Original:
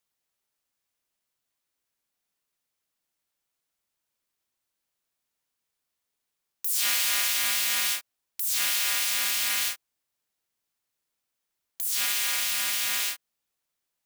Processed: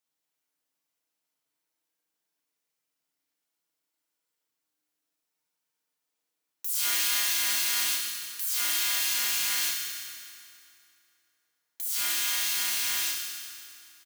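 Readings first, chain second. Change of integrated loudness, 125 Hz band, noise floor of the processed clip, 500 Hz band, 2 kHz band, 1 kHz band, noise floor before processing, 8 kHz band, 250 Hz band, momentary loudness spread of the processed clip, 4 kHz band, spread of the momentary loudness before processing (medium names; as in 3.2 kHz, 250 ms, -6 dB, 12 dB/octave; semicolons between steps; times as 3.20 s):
-1.5 dB, no reading, -84 dBFS, -3.0 dB, -2.5 dB, -2.0 dB, -83 dBFS, -0.5 dB, +1.0 dB, 13 LU, -1.0 dB, 9 LU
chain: high-pass 160 Hz 12 dB/octave; comb 6.3 ms, depth 36%; FDN reverb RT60 2.7 s, high-frequency decay 0.8×, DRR -1.5 dB; trim -5 dB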